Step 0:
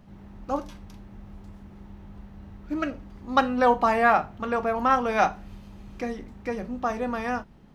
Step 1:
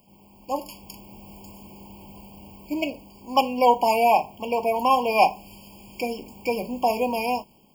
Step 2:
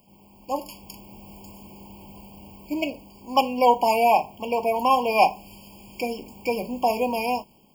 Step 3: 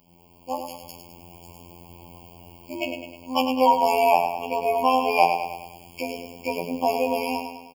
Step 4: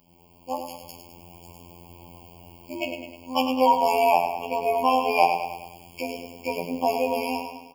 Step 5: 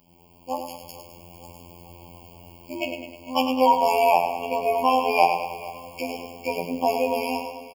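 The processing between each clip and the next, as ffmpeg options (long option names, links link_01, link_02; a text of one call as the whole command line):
ffmpeg -i in.wav -af "dynaudnorm=framelen=290:gausssize=5:maxgain=9dB,aemphasis=mode=production:type=riaa,afftfilt=real='re*eq(mod(floor(b*sr/1024/1100),2),0)':imag='im*eq(mod(floor(b*sr/1024/1100),2),0)':win_size=1024:overlap=0.75" out.wav
ffmpeg -i in.wav -af anull out.wav
ffmpeg -i in.wav -filter_complex "[0:a]asplit=2[link_01][link_02];[link_02]aecho=0:1:103|206|309|412|515|618:0.447|0.228|0.116|0.0593|0.0302|0.0154[link_03];[link_01][link_03]amix=inputs=2:normalize=0,afftfilt=real='hypot(re,im)*cos(PI*b)':imag='0':win_size=2048:overlap=0.75,volume=2.5dB" out.wav
ffmpeg -i in.wav -af "flanger=delay=7.7:depth=7.1:regen=-83:speed=0.48:shape=triangular,volume=3.5dB" out.wav
ffmpeg -i in.wav -af "aecho=1:1:451|902|1353|1804|2255:0.126|0.0755|0.0453|0.0272|0.0163,volume=1dB" out.wav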